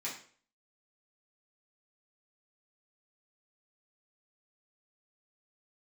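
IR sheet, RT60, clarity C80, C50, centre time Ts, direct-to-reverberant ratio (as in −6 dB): 0.45 s, 10.5 dB, 6.5 dB, 29 ms, −8.0 dB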